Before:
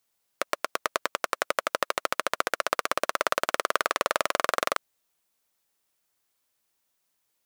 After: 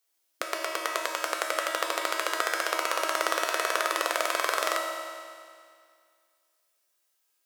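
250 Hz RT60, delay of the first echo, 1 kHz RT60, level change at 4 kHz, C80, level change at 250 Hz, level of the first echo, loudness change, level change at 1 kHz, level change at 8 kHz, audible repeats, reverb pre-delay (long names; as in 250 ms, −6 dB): 2.1 s, no echo audible, 2.1 s, +1.5 dB, 2.5 dB, 0.0 dB, no echo audible, 0.0 dB, −0.5 dB, +2.0 dB, no echo audible, 3 ms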